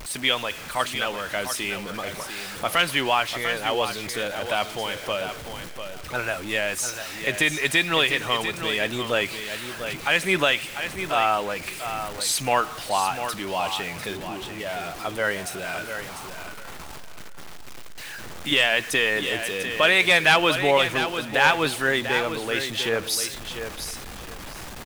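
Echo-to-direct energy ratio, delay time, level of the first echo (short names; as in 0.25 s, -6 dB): -9.0 dB, 0.696 s, -9.0 dB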